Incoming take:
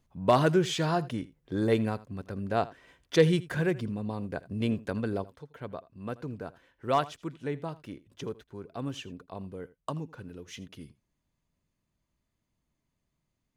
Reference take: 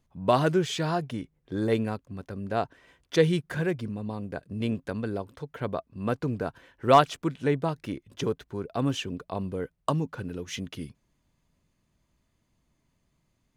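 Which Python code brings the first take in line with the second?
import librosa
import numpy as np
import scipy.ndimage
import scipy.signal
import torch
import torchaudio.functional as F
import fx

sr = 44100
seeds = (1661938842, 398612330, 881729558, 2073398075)

y = fx.fix_declip(x, sr, threshold_db=-11.0)
y = fx.fix_echo_inverse(y, sr, delay_ms=82, level_db=-19.5)
y = fx.fix_level(y, sr, at_s=5.24, step_db=8.5)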